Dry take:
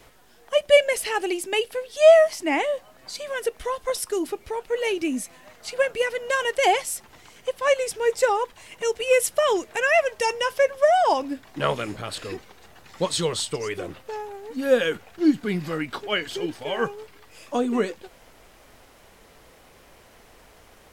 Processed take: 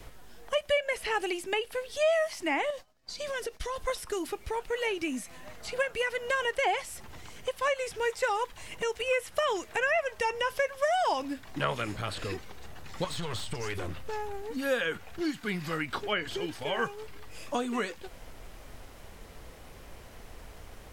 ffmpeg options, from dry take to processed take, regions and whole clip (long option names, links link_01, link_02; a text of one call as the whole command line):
ffmpeg -i in.wav -filter_complex "[0:a]asettb=1/sr,asplit=3[link_01][link_02][link_03];[link_01]atrim=end=2.704[link_04];[link_02]atrim=start=2.7:end=3.76,asetpts=PTS-STARTPTS,afade=type=in:duration=0.004:curve=qsin,afade=type=out:start_time=1.056:duration=0.004:curve=qsin,agate=range=-33dB:threshold=-38dB:ratio=3:release=100:detection=peak,equalizer=frequency=5200:width_type=o:width=1.1:gain=8.5,acompressor=threshold=-32dB:ratio=2.5:attack=3.2:release=140:knee=1:detection=peak[link_05];[link_03]atrim=start=3.756[link_06];[link_04][link_05]acrossfade=duration=0.004:curve1=hsin:curve2=qsin[link_07];[link_07][link_06]acrossfade=duration=0.004:curve1=qsin:curve2=hsin,asettb=1/sr,asplit=3[link_08][link_09][link_10];[link_08]atrim=end=13.044[link_11];[link_09]atrim=start=13.04:end=14.42,asetpts=PTS-STARTPTS,afade=type=in:duration=0.004:curve=qsin,afade=type=out:start_time=1.376:duration=0.004:curve=qsin,lowshelf=frequency=190:gain=9,acompressor=threshold=-24dB:ratio=4:attack=3.2:release=140:knee=1:detection=peak,aeval=exprs='clip(val(0),-1,0.0282)':channel_layout=same[link_12];[link_10]atrim=start=14.416[link_13];[link_11][link_12]acrossfade=duration=0.004:curve1=hsin:curve2=qsin[link_14];[link_14][link_13]acrossfade=duration=0.004:curve1=qsin:curve2=hsin,acrossover=split=3400[link_15][link_16];[link_16]acompressor=threshold=-39dB:ratio=4:attack=1:release=60[link_17];[link_15][link_17]amix=inputs=2:normalize=0,lowshelf=frequency=140:gain=11.5,acrossover=split=830|2000[link_18][link_19][link_20];[link_18]acompressor=threshold=-34dB:ratio=4[link_21];[link_19]acompressor=threshold=-30dB:ratio=4[link_22];[link_20]acompressor=threshold=-37dB:ratio=4[link_23];[link_21][link_22][link_23]amix=inputs=3:normalize=0" out.wav